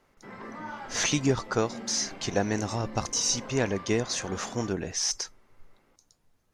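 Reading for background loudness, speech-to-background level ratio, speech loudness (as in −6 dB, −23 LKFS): −42.5 LKFS, 14.0 dB, −28.5 LKFS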